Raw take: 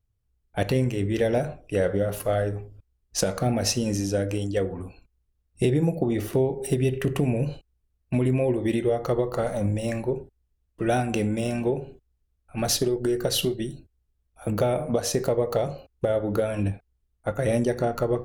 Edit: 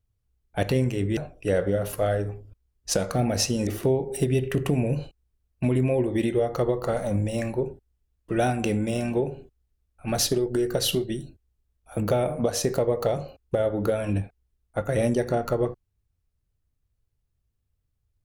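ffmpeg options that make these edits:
-filter_complex "[0:a]asplit=3[a][b][c];[a]atrim=end=1.172[d];[b]atrim=start=1.438:end=3.942[e];[c]atrim=start=6.168[f];[d][e]acrossfade=d=0.004:c1=hsin:c2=hsin[g];[g][f]acrossfade=d=0.004:c1=hsin:c2=hsin"

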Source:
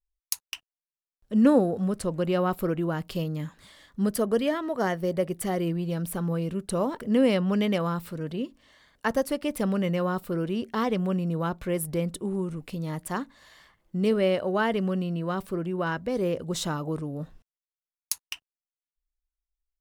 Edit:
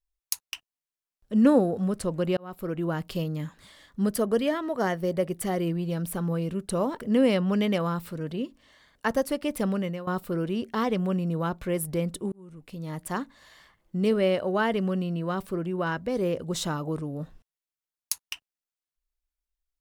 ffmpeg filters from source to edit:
-filter_complex "[0:a]asplit=4[a][b][c][d];[a]atrim=end=2.37,asetpts=PTS-STARTPTS,afade=t=out:st=2.366:d=0.004:c=hsin[e];[b]atrim=start=2.37:end=10.07,asetpts=PTS-STARTPTS,afade=t=in:d=0.53,afade=t=out:st=7.19:d=0.51:c=qsin:silence=0.149624[f];[c]atrim=start=10.07:end=12.32,asetpts=PTS-STARTPTS,afade=t=in:d=0.004:c=hsin:silence=0.149624,afade=t=out:st=2.246:d=0.004:c=hsin[g];[d]atrim=start=12.32,asetpts=PTS-STARTPTS,afade=t=in:d=0.79[h];[e][f][g][h]concat=n=4:v=0:a=1"

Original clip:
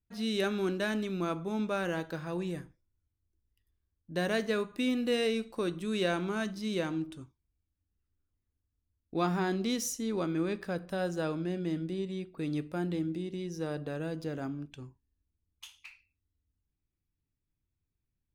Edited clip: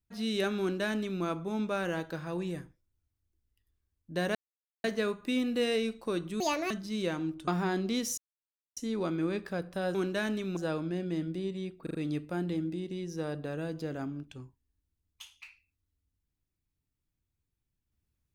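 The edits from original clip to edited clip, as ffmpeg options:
-filter_complex "[0:a]asplit=11[a][b][c][d][e][f][g][h][i][j][k];[a]atrim=end=4.35,asetpts=PTS-STARTPTS,afade=t=out:st=4.346:d=0.004:c=hsin,apad=pad_dur=0.49[l];[b]atrim=start=4.35:end=5.914,asetpts=PTS-STARTPTS,afade=t=in:d=0.004:c=hsin[m];[c]atrim=start=5.91:end=6.43,asetpts=PTS-STARTPTS,asetrate=74970,aresample=44100,atrim=end_sample=13489,asetpts=PTS-STARTPTS[n];[d]atrim=start=6.426:end=7.202[o];[e]atrim=start=9.228:end=9.93,asetpts=PTS-STARTPTS,afade=t=out:st=0.698:d=0.004:c=hsin,apad=pad_dur=0.59[p];[f]atrim=start=9.93:end=11.112,asetpts=PTS-STARTPTS,afade=t=in:d=0.004:c=hsin[q];[g]atrim=start=0.598:end=1.222[r];[h]atrim=start=11.108:end=12.412[s];[i]atrim=start=12.368:end=12.412[t];[j]atrim=start=12.368:end=12.412[u];[k]atrim=start=12.368[v];[l][m]concat=n=2:v=0:a=1[w];[w][n]acrossfade=d=0.004:c1=hsin:c2=hsin[x];[x][o]acrossfade=d=0.004:c1=hsin:c2=hsin[y];[p][q]concat=n=2:v=0:a=1[z];[y][z]acrossfade=d=0.004:c1=hsin:c2=hsin[aa];[aa][r]acrossfade=d=0.004:c1=hsin:c2=hsin[ab];[ab][s]acrossfade=d=0.004:c1=hsin:c2=hsin[ac];[ac][t]acrossfade=d=0.004:c1=hsin:c2=hsin[ad];[ad][u]acrossfade=d=0.004:c1=hsin:c2=hsin[ae];[ae][v]acrossfade=d=0.004:c1=hsin:c2=hsin"

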